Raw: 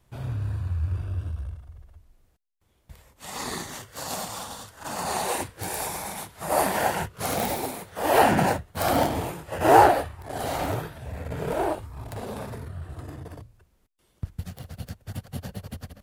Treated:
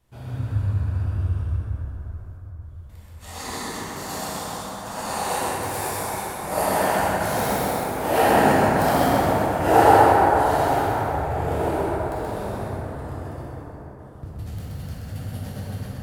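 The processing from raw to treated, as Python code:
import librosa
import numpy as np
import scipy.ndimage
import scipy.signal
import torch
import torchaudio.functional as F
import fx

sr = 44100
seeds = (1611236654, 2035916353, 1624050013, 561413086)

y = x + 10.0 ** (-3.5 / 20.0) * np.pad(x, (int(128 * sr / 1000.0), 0))[:len(x)]
y = fx.rev_plate(y, sr, seeds[0], rt60_s=4.9, hf_ratio=0.35, predelay_ms=0, drr_db=-6.5)
y = F.gain(torch.from_numpy(y), -5.0).numpy()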